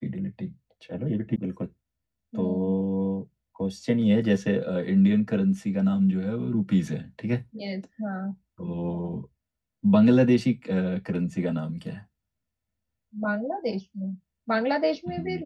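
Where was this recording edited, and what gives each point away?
1.36 s: sound stops dead

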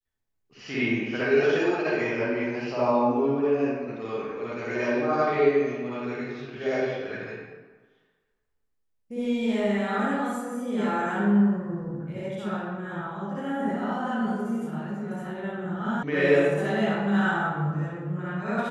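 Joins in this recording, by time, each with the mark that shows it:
16.03 s: sound stops dead

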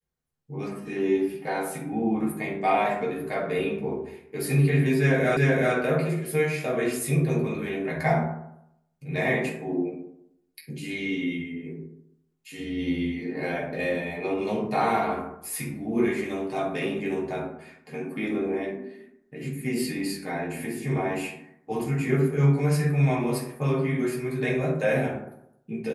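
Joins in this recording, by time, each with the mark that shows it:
5.37 s: repeat of the last 0.38 s

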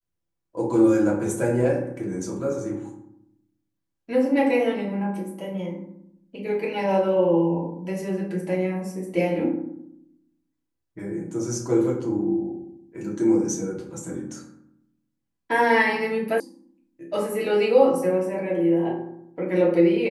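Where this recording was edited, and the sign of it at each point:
16.40 s: sound stops dead

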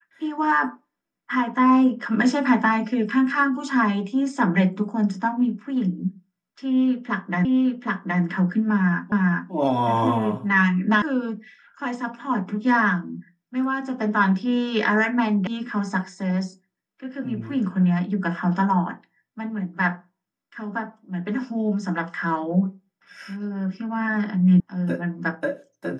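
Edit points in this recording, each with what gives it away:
7.45 s: repeat of the last 0.77 s
9.12 s: repeat of the last 0.4 s
11.02 s: sound stops dead
15.47 s: sound stops dead
24.60 s: sound stops dead

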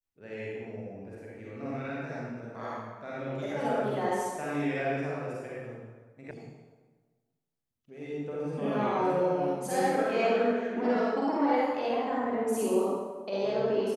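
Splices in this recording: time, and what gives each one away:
6.31 s: sound stops dead

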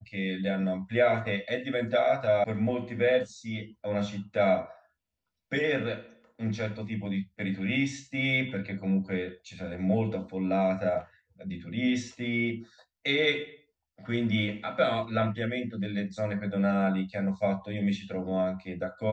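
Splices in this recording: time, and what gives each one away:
2.44 s: sound stops dead

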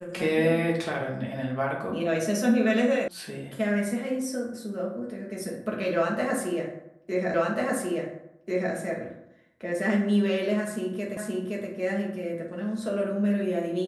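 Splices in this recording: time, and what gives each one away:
3.08 s: sound stops dead
7.34 s: repeat of the last 1.39 s
11.17 s: repeat of the last 0.52 s

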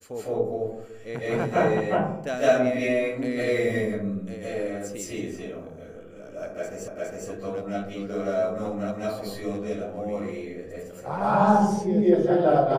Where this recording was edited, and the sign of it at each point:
6.88 s: repeat of the last 0.41 s

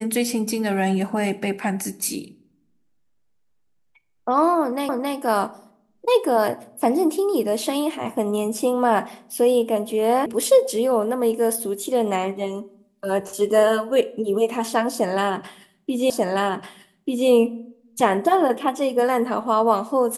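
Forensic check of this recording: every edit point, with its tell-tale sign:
4.89 s: repeat of the last 0.27 s
10.26 s: sound stops dead
16.10 s: repeat of the last 1.19 s

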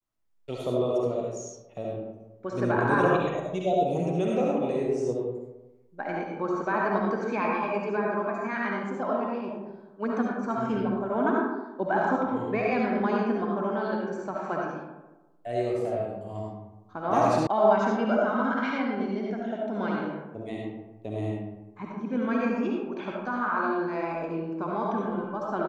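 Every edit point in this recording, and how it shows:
17.47 s: sound stops dead

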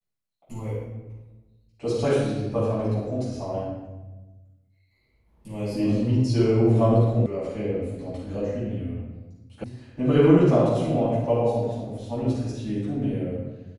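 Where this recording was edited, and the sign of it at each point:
7.26 s: sound stops dead
9.64 s: sound stops dead

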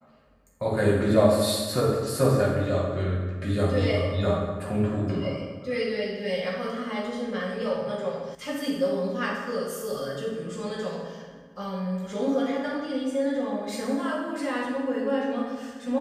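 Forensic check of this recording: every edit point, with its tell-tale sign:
8.35 s: sound stops dead

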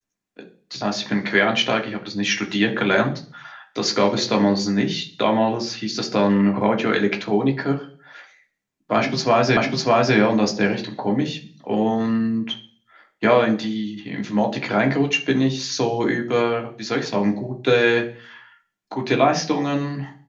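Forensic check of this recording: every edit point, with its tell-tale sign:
9.57 s: repeat of the last 0.6 s

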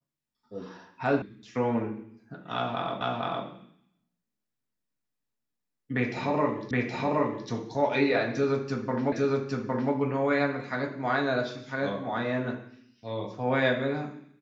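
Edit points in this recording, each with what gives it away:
1.22 s: sound stops dead
3.01 s: repeat of the last 0.46 s
6.71 s: repeat of the last 0.77 s
9.12 s: repeat of the last 0.81 s

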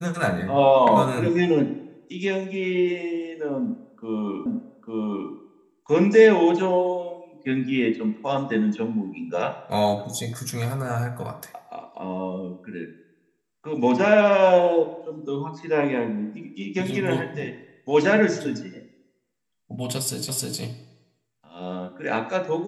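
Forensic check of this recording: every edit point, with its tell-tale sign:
4.46 s: repeat of the last 0.85 s
20.29 s: repeat of the last 0.31 s

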